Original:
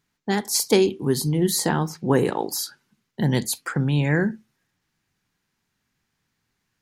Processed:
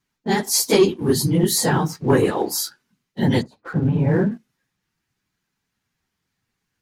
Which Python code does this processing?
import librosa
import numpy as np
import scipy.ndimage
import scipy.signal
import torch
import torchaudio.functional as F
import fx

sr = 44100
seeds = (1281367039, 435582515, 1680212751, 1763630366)

y = fx.phase_scramble(x, sr, seeds[0], window_ms=50)
y = fx.lowpass(y, sr, hz=1000.0, slope=12, at=(3.41, 4.3), fade=0.02)
y = fx.leveller(y, sr, passes=1)